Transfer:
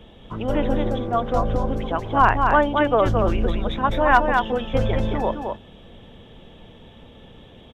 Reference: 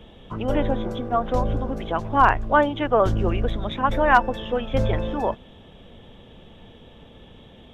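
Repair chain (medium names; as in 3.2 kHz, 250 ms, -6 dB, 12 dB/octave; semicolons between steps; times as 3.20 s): inverse comb 219 ms -4.5 dB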